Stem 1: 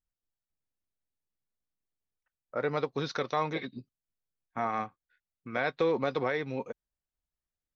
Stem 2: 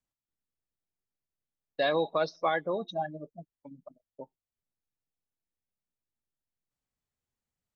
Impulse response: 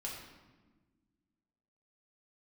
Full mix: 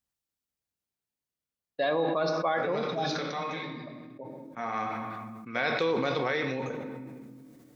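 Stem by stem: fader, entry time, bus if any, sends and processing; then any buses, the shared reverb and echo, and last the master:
−4.5 dB, 0.00 s, send −3.5 dB, high-shelf EQ 2,000 Hz +9 dB; automatic ducking −15 dB, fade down 1.90 s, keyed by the second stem
−3.0 dB, 0.00 s, send −5 dB, high-shelf EQ 4,400 Hz −9 dB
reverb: on, RT60 1.3 s, pre-delay 4 ms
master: high-pass filter 48 Hz; level that may fall only so fast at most 22 dB per second

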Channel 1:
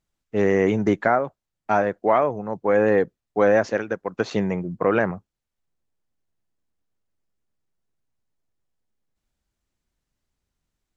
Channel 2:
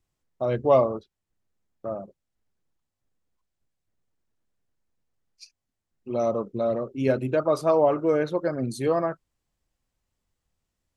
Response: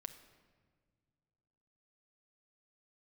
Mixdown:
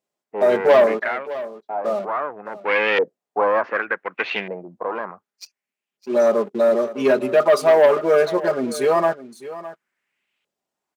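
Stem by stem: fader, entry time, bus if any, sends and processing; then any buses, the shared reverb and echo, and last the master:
−1.0 dB, 0.00 s, no send, no echo send, parametric band 2,600 Hz +14 dB 1.5 octaves; asymmetric clip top −23 dBFS, bottom −9.5 dBFS; auto-filter low-pass saw up 0.67 Hz 550–3,200 Hz; automatic ducking −9 dB, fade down 1.40 s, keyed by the second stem
−1.0 dB, 0.00 s, no send, echo send −15.5 dB, comb filter 4.9 ms, depth 99%; leveller curve on the samples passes 2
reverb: not used
echo: single-tap delay 610 ms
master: high-pass filter 310 Hz 12 dB per octave

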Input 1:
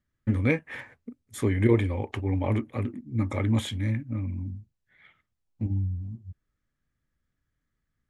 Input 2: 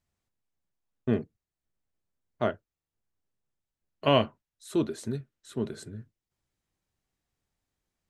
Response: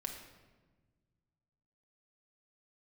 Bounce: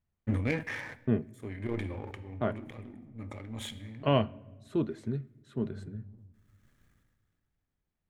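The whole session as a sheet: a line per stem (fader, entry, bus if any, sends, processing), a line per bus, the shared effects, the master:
−0.5 dB, 0.00 s, send −18.5 dB, parametric band 4,900 Hz −3.5 dB 0.26 octaves; power curve on the samples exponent 1.4; level that may fall only so fast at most 32 dB per second; automatic ducking −16 dB, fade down 1.50 s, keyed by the second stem
−5.5 dB, 0.00 s, send −16 dB, bass and treble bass +6 dB, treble −14 dB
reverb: on, RT60 1.3 s, pre-delay 5 ms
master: no processing

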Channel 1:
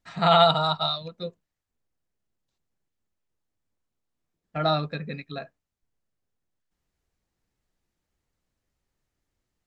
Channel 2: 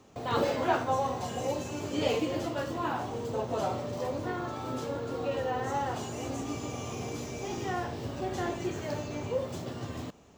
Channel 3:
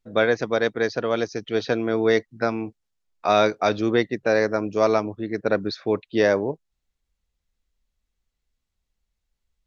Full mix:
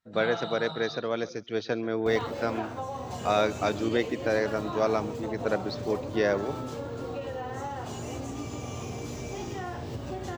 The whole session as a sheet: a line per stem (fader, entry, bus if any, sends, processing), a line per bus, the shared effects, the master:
−14.5 dB, 0.00 s, bus A, no send, no echo send, random phases in long frames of 200 ms; bass and treble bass +4 dB, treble +4 dB
+2.0 dB, 1.90 s, bus A, no send, no echo send, low-shelf EQ 72 Hz +11 dB
−6.5 dB, 0.00 s, no bus, no send, echo send −20 dB, high-pass filter 62 Hz
bus A: 0.0 dB, noise gate −50 dBFS, range −23 dB; downward compressor, threshold −32 dBFS, peak gain reduction 12.5 dB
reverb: not used
echo: repeating echo 136 ms, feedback 23%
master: no processing

